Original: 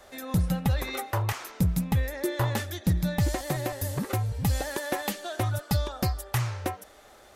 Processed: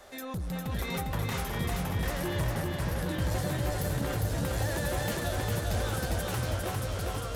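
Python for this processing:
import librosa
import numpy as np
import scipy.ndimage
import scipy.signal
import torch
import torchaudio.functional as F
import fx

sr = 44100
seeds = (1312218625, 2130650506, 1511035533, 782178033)

p1 = fx.lowpass(x, sr, hz=1200.0, slope=12, at=(2.42, 2.98))
p2 = fx.over_compress(p1, sr, threshold_db=-29.0, ratio=-1.0)
p3 = p1 + (p2 * 10.0 ** (1.5 / 20.0))
p4 = 10.0 ** (-22.0 / 20.0) * np.tanh(p3 / 10.0 ** (-22.0 / 20.0))
p5 = fx.echo_pitch(p4, sr, ms=581, semitones=-2, count=2, db_per_echo=-3.0)
p6 = p5 + fx.echo_feedback(p5, sr, ms=403, feedback_pct=54, wet_db=-3, dry=0)
y = p6 * 10.0 ** (-8.5 / 20.0)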